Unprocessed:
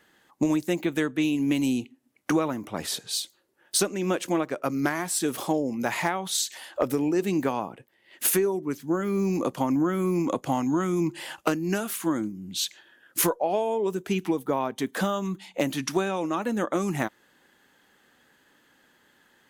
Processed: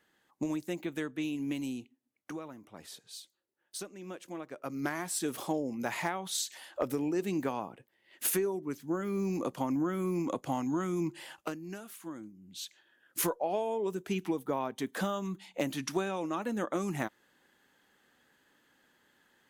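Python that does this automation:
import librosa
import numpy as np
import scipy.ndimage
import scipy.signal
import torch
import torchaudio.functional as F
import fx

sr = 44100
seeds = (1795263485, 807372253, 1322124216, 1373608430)

y = fx.gain(x, sr, db=fx.line((1.47, -10.0), (2.31, -17.5), (4.28, -17.5), (4.94, -7.0), (11.07, -7.0), (11.78, -16.5), (12.33, -16.5), (13.34, -6.5)))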